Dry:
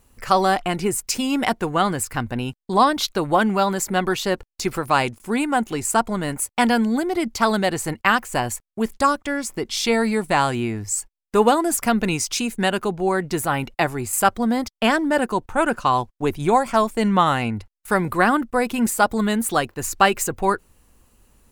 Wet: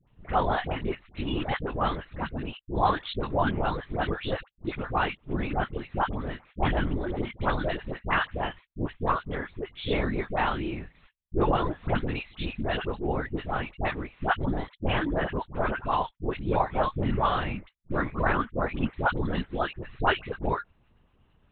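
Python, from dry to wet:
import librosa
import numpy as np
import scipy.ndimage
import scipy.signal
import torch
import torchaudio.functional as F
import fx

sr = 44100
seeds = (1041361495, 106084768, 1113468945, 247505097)

y = fx.vibrato(x, sr, rate_hz=0.86, depth_cents=37.0)
y = fx.lpc_vocoder(y, sr, seeds[0], excitation='whisper', order=10)
y = fx.dispersion(y, sr, late='highs', ms=77.0, hz=860.0)
y = F.gain(torch.from_numpy(y), -7.5).numpy()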